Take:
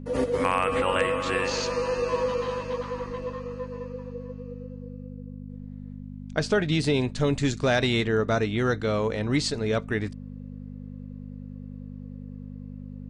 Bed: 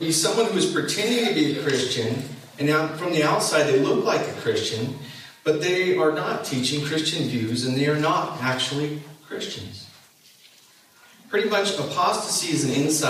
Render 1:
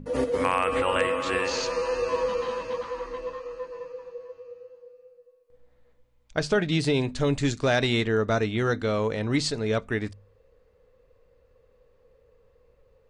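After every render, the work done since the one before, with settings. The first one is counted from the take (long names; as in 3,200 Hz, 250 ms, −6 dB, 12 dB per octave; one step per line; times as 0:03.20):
hum removal 50 Hz, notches 5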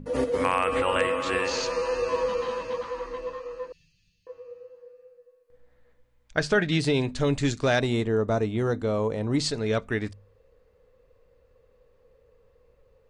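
0:03.72–0:04.27: elliptic band-stop filter 160–3,100 Hz, stop band 70 dB
0:04.78–0:06.78: parametric band 1,700 Hz +6 dB 0.53 octaves
0:07.80–0:09.40: flat-topped bell 2,800 Hz −8.5 dB 2.4 octaves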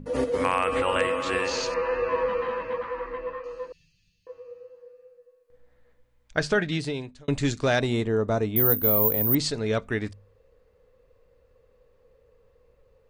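0:01.74–0:03.44: low-pass with resonance 2,000 Hz, resonance Q 1.7
0:06.48–0:07.28: fade out
0:08.56–0:09.35: bad sample-rate conversion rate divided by 3×, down filtered, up zero stuff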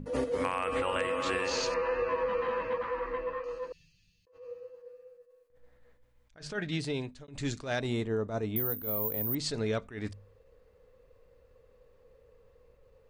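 downward compressor 6 to 1, threshold −27 dBFS, peak gain reduction 12.5 dB
level that may rise only so fast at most 150 dB per second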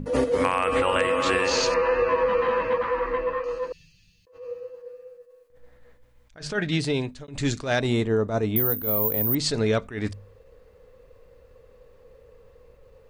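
level +8.5 dB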